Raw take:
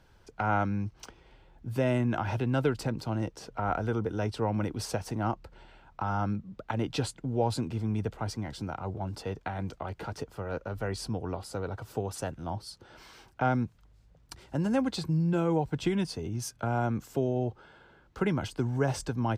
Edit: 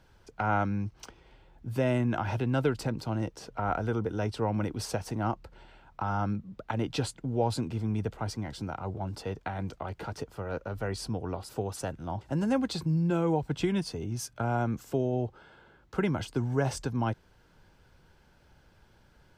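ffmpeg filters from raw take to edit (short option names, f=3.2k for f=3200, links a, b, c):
-filter_complex "[0:a]asplit=3[a][b][c];[a]atrim=end=11.492[d];[b]atrim=start=11.878:end=12.602[e];[c]atrim=start=14.438[f];[d][e]acrossfade=d=0.004:c1=hsin:c2=hsin[g];[g][f]acrossfade=d=0.004:c1=hsin:c2=hsin"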